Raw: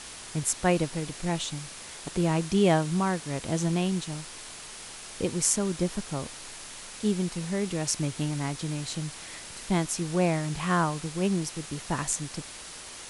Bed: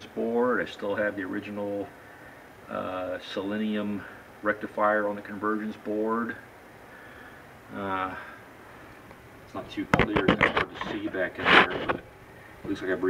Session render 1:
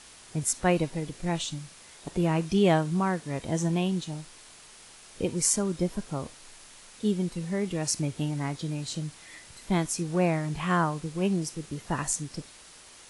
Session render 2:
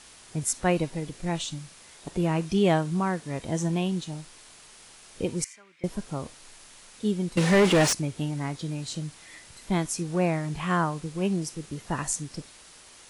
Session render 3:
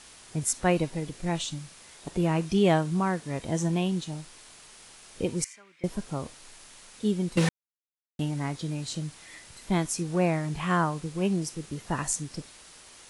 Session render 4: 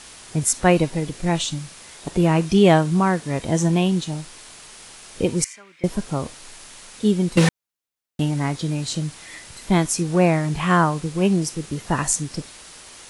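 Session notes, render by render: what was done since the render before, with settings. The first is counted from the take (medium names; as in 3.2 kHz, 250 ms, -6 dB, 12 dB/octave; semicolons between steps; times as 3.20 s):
noise print and reduce 8 dB
5.44–5.84 s: band-pass filter 2.2 kHz, Q 4.7; 7.37–7.93 s: overdrive pedal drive 31 dB, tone 2.7 kHz, clips at -10 dBFS
7.49–8.19 s: mute
trim +8 dB; peak limiter -2 dBFS, peak gain reduction 1 dB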